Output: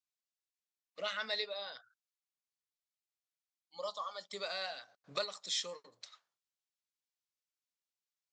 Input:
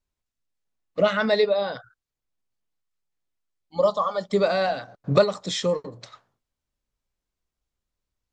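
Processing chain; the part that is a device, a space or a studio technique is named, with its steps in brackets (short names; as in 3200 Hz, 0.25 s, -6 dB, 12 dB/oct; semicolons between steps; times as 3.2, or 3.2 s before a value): piezo pickup straight into a mixer (LPF 5700 Hz 12 dB/oct; differentiator)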